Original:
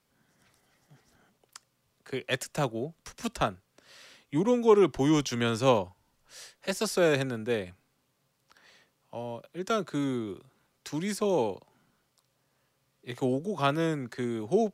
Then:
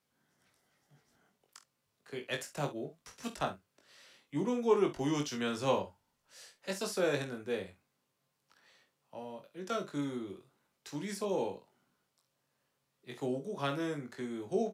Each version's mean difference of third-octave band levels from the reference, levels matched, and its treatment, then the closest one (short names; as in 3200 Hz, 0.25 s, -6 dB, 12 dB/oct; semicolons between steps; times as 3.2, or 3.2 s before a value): 2.0 dB: low shelf 74 Hz -10.5 dB; on a send: early reflections 21 ms -4.5 dB, 48 ms -12.5 dB, 68 ms -15 dB; on the sum: gain -8 dB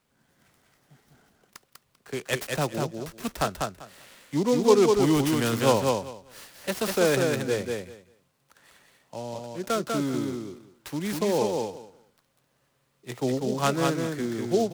7.0 dB: on a send: feedback echo 0.196 s, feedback 17%, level -3.5 dB; on the sum: noise-modulated delay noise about 4900 Hz, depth 0.039 ms; gain +1.5 dB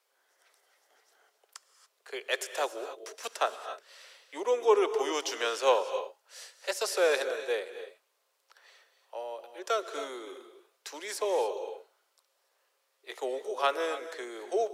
9.0 dB: steep high-pass 420 Hz 36 dB/oct; non-linear reverb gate 0.31 s rising, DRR 10 dB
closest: first